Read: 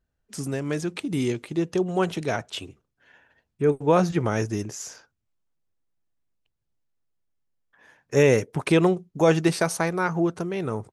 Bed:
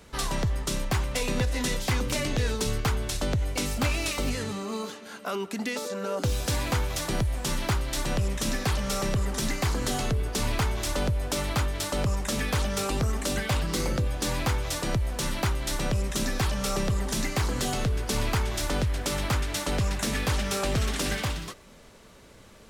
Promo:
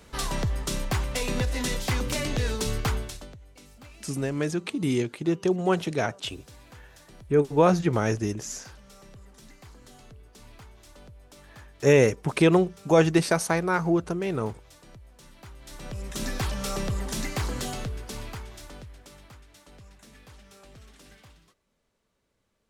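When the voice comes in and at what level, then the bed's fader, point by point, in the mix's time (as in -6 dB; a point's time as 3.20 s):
3.70 s, 0.0 dB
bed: 2.97 s -0.5 dB
3.39 s -22.5 dB
15.35 s -22.5 dB
16.27 s -2.5 dB
17.53 s -2.5 dB
19.39 s -24 dB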